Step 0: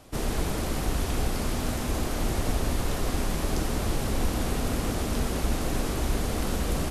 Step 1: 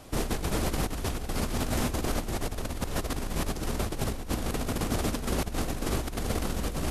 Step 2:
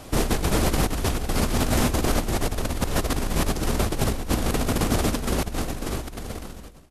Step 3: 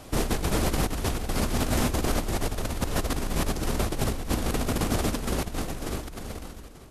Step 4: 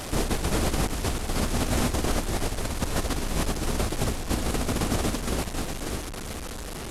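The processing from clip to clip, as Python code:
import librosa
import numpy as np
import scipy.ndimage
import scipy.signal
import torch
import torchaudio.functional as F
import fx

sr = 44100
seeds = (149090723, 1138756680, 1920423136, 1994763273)

y1 = fx.over_compress(x, sr, threshold_db=-29.0, ratio=-0.5)
y2 = fx.fade_out_tail(y1, sr, length_s=2.08)
y2 = F.gain(torch.from_numpy(y2), 7.0).numpy()
y3 = y2 + 10.0 ** (-17.0 / 20.0) * np.pad(y2, (int(887 * sr / 1000.0), 0))[:len(y2)]
y3 = F.gain(torch.from_numpy(y3), -3.5).numpy()
y4 = fx.delta_mod(y3, sr, bps=64000, step_db=-29.0)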